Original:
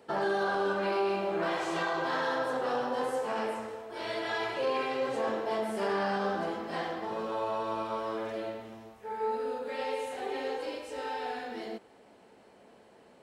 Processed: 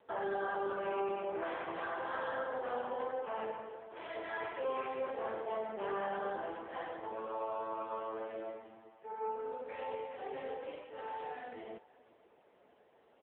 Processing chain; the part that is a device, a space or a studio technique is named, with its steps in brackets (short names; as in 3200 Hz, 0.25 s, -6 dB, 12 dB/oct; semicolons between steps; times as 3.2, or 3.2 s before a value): satellite phone (BPF 340–3200 Hz; echo 0.532 s -22.5 dB; gain -4.5 dB; AMR-NB 6.7 kbps 8000 Hz)